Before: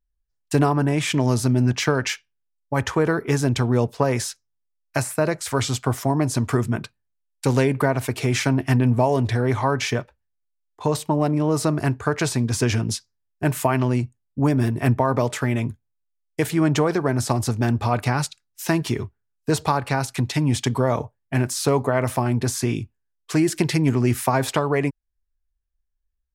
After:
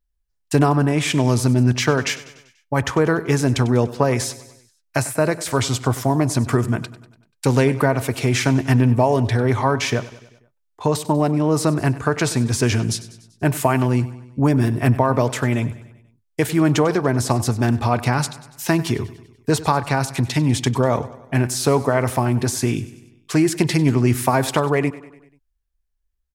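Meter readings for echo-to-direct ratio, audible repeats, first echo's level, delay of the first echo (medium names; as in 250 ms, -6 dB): -15.5 dB, 4, -17.0 dB, 97 ms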